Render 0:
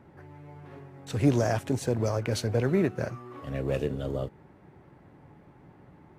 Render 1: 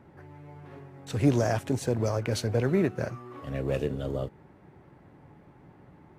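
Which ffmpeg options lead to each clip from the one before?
ffmpeg -i in.wav -af anull out.wav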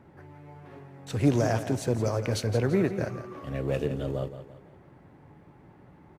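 ffmpeg -i in.wav -af "aecho=1:1:169|338|507|676:0.266|0.112|0.0469|0.0197" out.wav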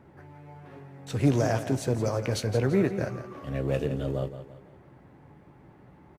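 ffmpeg -i in.wav -filter_complex "[0:a]asplit=2[link_01][link_02];[link_02]adelay=15,volume=-12.5dB[link_03];[link_01][link_03]amix=inputs=2:normalize=0" out.wav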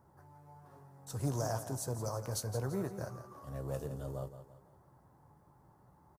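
ffmpeg -i in.wav -af "firequalizer=gain_entry='entry(110,0);entry(260,-7);entry(980,5);entry(2300,-15);entry(5000,4);entry(11000,13)':delay=0.05:min_phase=1,volume=-9dB" out.wav

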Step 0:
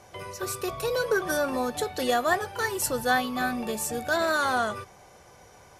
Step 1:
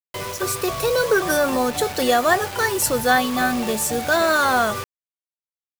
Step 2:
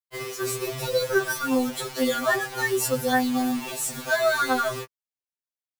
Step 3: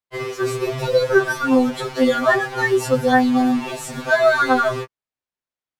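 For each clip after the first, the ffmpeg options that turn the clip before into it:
ffmpeg -i in.wav -filter_complex "[0:a]asplit=2[link_01][link_02];[link_02]asoftclip=type=tanh:threshold=-27dB,volume=-6dB[link_03];[link_01][link_03]amix=inputs=2:normalize=0,acrusher=bits=5:mix=0:aa=0.000001,volume=5dB" out.wav
ffmpeg -i in.wav -af "afftfilt=real='re*2.45*eq(mod(b,6),0)':imag='im*2.45*eq(mod(b,6),0)':win_size=2048:overlap=0.75,volume=-3dB" out.wav
ffmpeg -i in.wav -af "aemphasis=mode=reproduction:type=75fm,volume=7dB" out.wav

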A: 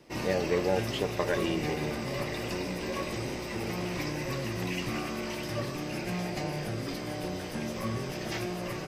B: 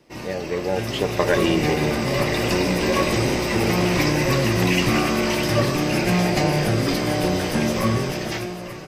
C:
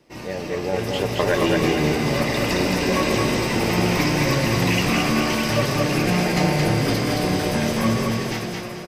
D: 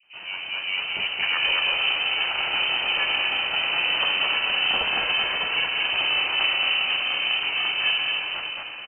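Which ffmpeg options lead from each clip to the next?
ffmpeg -i in.wav -af "dynaudnorm=framelen=150:gausssize=13:maxgain=14dB" out.wav
ffmpeg -i in.wav -af "aecho=1:1:221|442|663|884:0.708|0.234|0.0771|0.0254,volume=-1.5dB" out.wav
ffmpeg -i in.wav -filter_complex "[0:a]acrossover=split=720[link_01][link_02];[link_02]adelay=30[link_03];[link_01][link_03]amix=inputs=2:normalize=0,aeval=exprs='val(0)*sin(2*PI*270*n/s)':channel_layout=same,lowpass=frequency=2600:width_type=q:width=0.5098,lowpass=frequency=2600:width_type=q:width=0.6013,lowpass=frequency=2600:width_type=q:width=0.9,lowpass=frequency=2600:width_type=q:width=2.563,afreqshift=-3100" out.wav

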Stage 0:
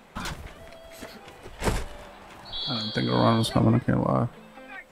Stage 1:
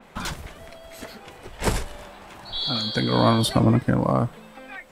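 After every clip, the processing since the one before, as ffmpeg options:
ffmpeg -i in.wav -af "adynamicequalizer=threshold=0.01:dfrequency=3800:dqfactor=0.7:tfrequency=3800:tqfactor=0.7:attack=5:release=100:ratio=0.375:range=2:mode=boostabove:tftype=highshelf,volume=2.5dB" out.wav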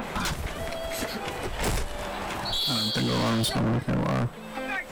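ffmpeg -i in.wav -af "acompressor=mode=upward:threshold=-23dB:ratio=2.5,volume=24.5dB,asoftclip=hard,volume=-24.5dB,volume=1.5dB" out.wav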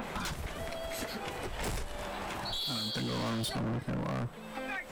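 ffmpeg -i in.wav -af "acompressor=threshold=-27dB:ratio=6,volume=-5.5dB" out.wav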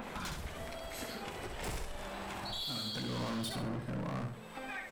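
ffmpeg -i in.wav -af "aecho=1:1:66|132|198|264:0.531|0.17|0.0544|0.0174,volume=-5dB" out.wav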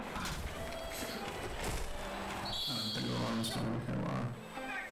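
ffmpeg -i in.wav -filter_complex "[0:a]aresample=32000,aresample=44100,asplit=2[link_01][link_02];[link_02]asoftclip=type=tanh:threshold=-38.5dB,volume=-11dB[link_03];[link_01][link_03]amix=inputs=2:normalize=0" out.wav

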